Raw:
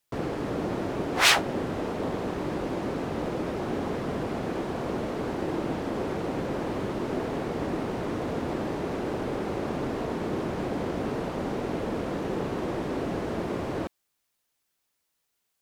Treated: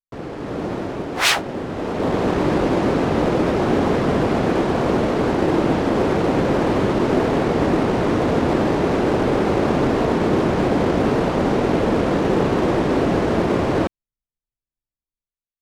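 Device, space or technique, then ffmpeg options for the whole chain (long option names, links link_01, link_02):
voice memo with heavy noise removal: -af "anlmdn=0.0631,dynaudnorm=framelen=110:gausssize=11:maxgain=13.5dB,volume=-1dB"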